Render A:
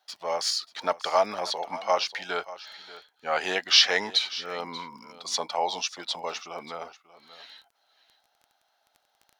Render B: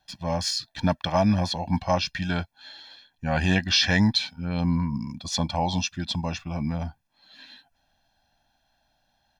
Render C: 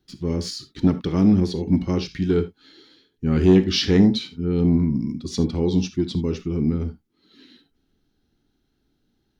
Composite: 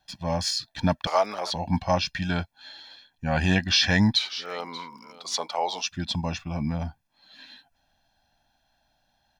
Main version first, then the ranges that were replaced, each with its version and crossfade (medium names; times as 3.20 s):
B
1.07–1.53 s: from A
4.17–5.86 s: from A
not used: C